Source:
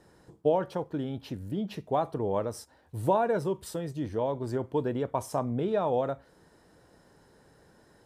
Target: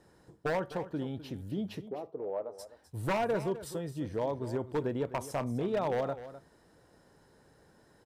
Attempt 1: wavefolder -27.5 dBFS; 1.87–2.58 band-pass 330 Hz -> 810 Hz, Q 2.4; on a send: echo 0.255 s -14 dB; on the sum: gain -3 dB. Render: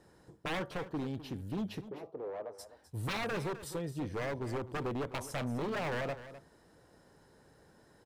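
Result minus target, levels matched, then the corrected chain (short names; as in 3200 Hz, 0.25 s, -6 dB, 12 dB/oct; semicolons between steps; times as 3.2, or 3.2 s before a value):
wavefolder: distortion +11 dB
wavefolder -21 dBFS; 1.87–2.58 band-pass 330 Hz -> 810 Hz, Q 2.4; on a send: echo 0.255 s -14 dB; on the sum: gain -3 dB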